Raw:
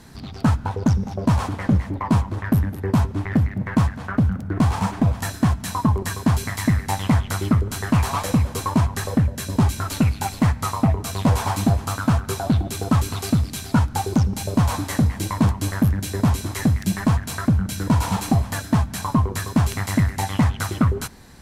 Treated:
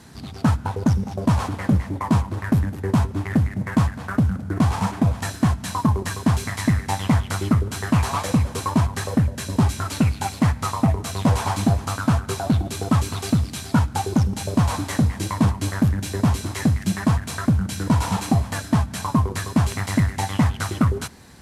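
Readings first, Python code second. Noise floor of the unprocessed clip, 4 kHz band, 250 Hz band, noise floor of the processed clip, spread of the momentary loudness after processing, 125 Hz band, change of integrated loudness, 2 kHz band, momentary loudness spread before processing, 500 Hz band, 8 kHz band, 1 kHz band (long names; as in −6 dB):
−36 dBFS, 0.0 dB, 0.0 dB, −37 dBFS, 1 LU, −0.5 dB, −0.5 dB, 0.0 dB, 1 LU, 0.0 dB, −0.5 dB, 0.0 dB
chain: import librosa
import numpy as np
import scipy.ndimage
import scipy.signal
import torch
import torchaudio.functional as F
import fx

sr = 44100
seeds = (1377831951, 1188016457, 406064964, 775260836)

y = fx.cvsd(x, sr, bps=64000)
y = scipy.signal.sosfilt(scipy.signal.butter(2, 55.0, 'highpass', fs=sr, output='sos'), y)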